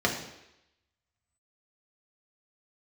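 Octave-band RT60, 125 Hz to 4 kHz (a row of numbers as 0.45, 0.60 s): 0.70, 0.80, 0.85, 0.85, 0.90, 0.90 s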